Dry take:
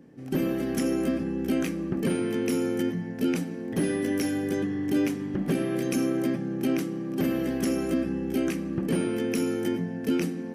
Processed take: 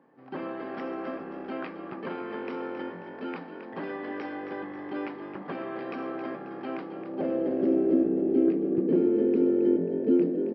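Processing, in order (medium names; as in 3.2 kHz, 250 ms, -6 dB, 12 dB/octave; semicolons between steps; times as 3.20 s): band-pass sweep 1 kHz -> 360 Hz, 6.69–7.76 s; resampled via 11.025 kHz; frequency-shifting echo 269 ms, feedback 46%, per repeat +48 Hz, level -10 dB; trim +6.5 dB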